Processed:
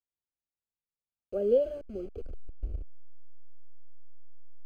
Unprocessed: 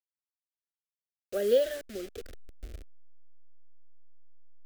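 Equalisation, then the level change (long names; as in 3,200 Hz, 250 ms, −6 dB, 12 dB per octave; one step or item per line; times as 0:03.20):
moving average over 24 samples
low-shelf EQ 150 Hz +9 dB
0.0 dB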